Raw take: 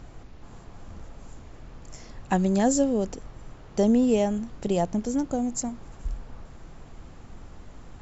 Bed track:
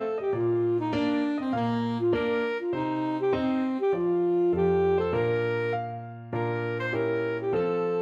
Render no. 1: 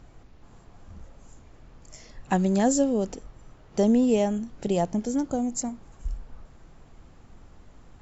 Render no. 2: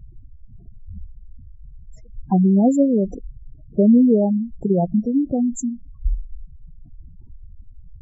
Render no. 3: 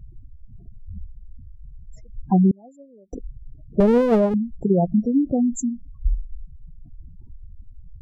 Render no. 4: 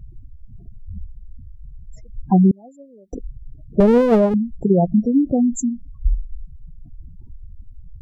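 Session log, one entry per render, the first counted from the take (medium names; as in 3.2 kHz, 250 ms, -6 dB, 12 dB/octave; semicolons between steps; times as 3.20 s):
noise print and reduce 6 dB
spectral gate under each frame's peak -10 dB strong; bass shelf 480 Hz +10.5 dB
2.51–3.13 s: band-pass filter 2.2 kHz, Q 5.6; 3.80–4.34 s: comb filter that takes the minimum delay 1.6 ms
trim +3 dB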